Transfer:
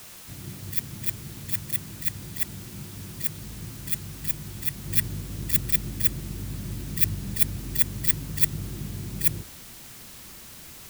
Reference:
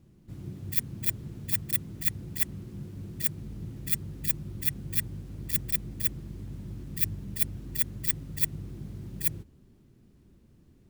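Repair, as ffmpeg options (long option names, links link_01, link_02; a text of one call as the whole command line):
ffmpeg -i in.wav -af "afwtdn=0.0056,asetnsamples=nb_out_samples=441:pad=0,asendcmd='4.87 volume volume -5.5dB',volume=0dB" out.wav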